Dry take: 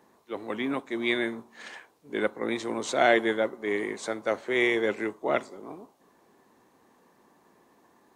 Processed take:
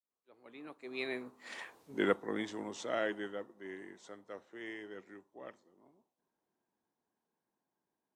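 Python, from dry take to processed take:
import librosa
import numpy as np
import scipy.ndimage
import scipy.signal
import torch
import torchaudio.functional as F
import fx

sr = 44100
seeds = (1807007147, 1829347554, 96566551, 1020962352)

y = fx.fade_in_head(x, sr, length_s=1.23)
y = fx.doppler_pass(y, sr, speed_mps=30, closest_m=5.6, pass_at_s=1.81)
y = y * 10.0 ** (2.0 / 20.0)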